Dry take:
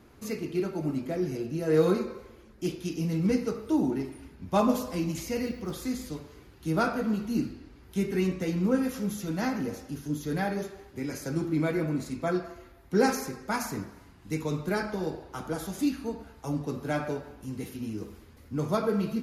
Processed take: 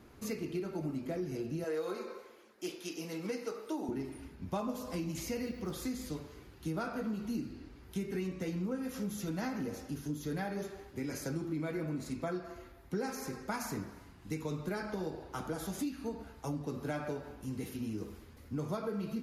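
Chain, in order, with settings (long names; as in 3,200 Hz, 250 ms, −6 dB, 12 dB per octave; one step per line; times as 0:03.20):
0:01.64–0:03.89: high-pass filter 440 Hz 12 dB per octave
downward compressor 6 to 1, threshold −32 dBFS, peak gain reduction 13.5 dB
level −1.5 dB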